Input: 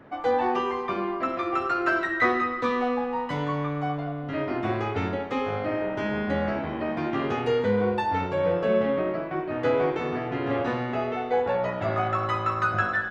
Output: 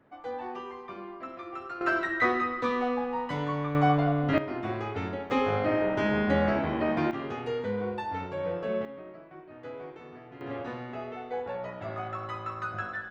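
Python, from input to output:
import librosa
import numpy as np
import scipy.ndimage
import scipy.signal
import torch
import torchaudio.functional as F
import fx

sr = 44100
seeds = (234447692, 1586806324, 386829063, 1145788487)

y = fx.gain(x, sr, db=fx.steps((0.0, -13.0), (1.81, -3.0), (3.75, 6.0), (4.38, -5.5), (5.3, 1.5), (7.11, -8.0), (8.85, -18.0), (10.41, -10.0)))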